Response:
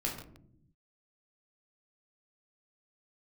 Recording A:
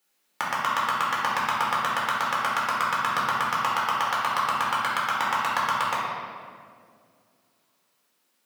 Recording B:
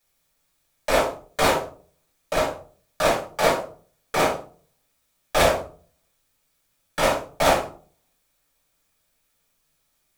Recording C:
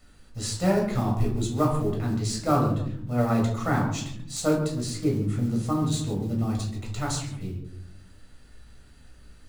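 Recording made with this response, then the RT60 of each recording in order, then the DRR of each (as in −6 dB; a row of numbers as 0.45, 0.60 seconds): C; 2.2 s, 0.40 s, non-exponential decay; −6.5, −5.5, −2.0 decibels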